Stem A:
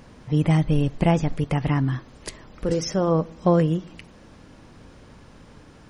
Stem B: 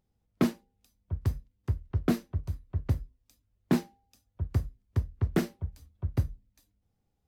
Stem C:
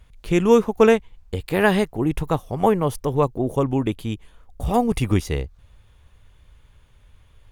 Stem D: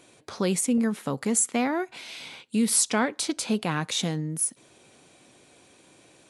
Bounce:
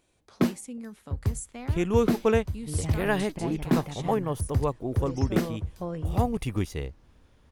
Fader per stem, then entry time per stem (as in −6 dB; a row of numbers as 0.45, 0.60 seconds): −16.0, +1.5, −8.5, −15.5 decibels; 2.35, 0.00, 1.45, 0.00 seconds